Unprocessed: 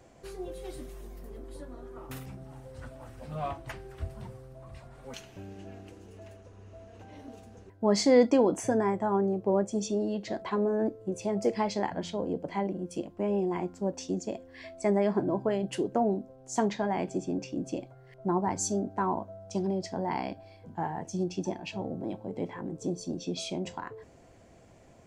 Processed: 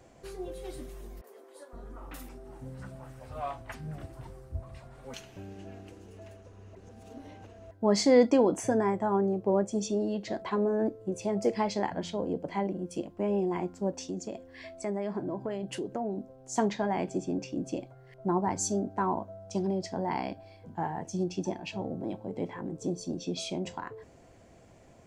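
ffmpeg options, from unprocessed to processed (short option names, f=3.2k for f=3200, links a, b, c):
-filter_complex "[0:a]asettb=1/sr,asplit=3[a][b][c];[a]atrim=end=1.214[d];[b]atrim=start=1.21:end=4.63,asetpts=PTS-STARTPTS,afade=t=in:d=0.004:c=qsin,afade=t=out:st=3.416:d=0.004:c=qsin,acrossover=split=400|3300[e][f][g];[g]adelay=30[h];[e]adelay=520[i];[i][f][h]amix=inputs=3:normalize=0,atrim=end_sample=150822[j];[c]atrim=start=4.626[k];[d][j]acrossfade=d=0.004:c1=hsin:c2=qsin[l];[l][k]acrossfade=d=0.004:c1=qsin:c2=hsin,asettb=1/sr,asplit=3[m][n][o];[m]atrim=end=13.984[p];[n]atrim=start=13.98:end=16.18,asetpts=PTS-STARTPTS,afade=t=in:d=0.004:c=qsin,afade=t=out:st=2.196:d=0.004:c=qsin,acompressor=threshold=-34dB:ratio=2:attack=3.2:release=140:knee=1:detection=peak[q];[o]atrim=start=16.176[r];[p][q]acrossfade=d=0.004:c1=hsin:c2=qsin[s];[s][r]acrossfade=d=0.004:c1=qsin:c2=hsin,asplit=3[t][u][v];[t]atrim=end=6.752[w];[u]atrim=start=6.748:end=7.712,asetpts=PTS-STARTPTS,areverse[x];[v]atrim=start=7.708[y];[w][x]acrossfade=d=0.004:c1=hsin:c2=hsin[z];[z][y]acrossfade=d=0.004:c1=hsin:c2=hsin"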